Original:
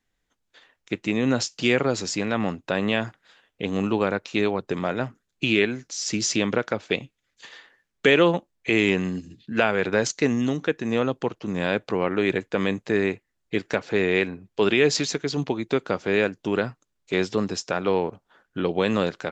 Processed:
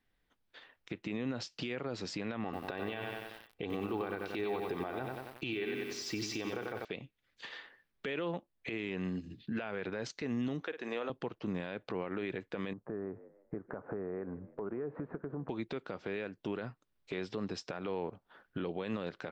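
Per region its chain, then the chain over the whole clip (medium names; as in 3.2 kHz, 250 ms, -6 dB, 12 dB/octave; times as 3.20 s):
2.44–6.85 s: peaking EQ 870 Hz +4 dB 0.62 oct + comb 2.6 ms, depth 45% + bit-crushed delay 92 ms, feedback 55%, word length 7-bit, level -6.5 dB
10.61–11.10 s: high-pass 430 Hz + flutter echo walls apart 8.8 m, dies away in 0.22 s
12.73–15.49 s: steep low-pass 1.4 kHz + compression 3:1, threshold -34 dBFS + frequency-shifting echo 154 ms, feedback 33%, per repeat +60 Hz, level -20 dB
whole clip: compression 2:1, threshold -37 dBFS; peaking EQ 6.9 kHz -14.5 dB 0.55 oct; peak limiter -26 dBFS; trim -1 dB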